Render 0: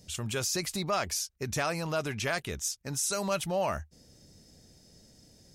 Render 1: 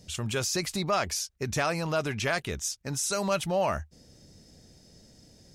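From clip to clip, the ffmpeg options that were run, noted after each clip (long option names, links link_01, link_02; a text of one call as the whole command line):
ffmpeg -i in.wav -af "highshelf=frequency=9300:gain=-7.5,volume=3dB" out.wav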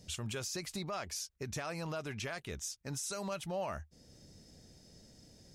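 ffmpeg -i in.wav -af "alimiter=level_in=2dB:limit=-24dB:level=0:latency=1:release=482,volume=-2dB,volume=-3.5dB" out.wav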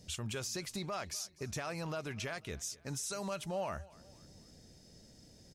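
ffmpeg -i in.wav -af "aecho=1:1:248|496|744:0.0794|0.0373|0.0175" out.wav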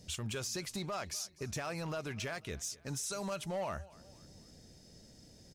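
ffmpeg -i in.wav -af "volume=33dB,asoftclip=hard,volume=-33dB,volume=1dB" out.wav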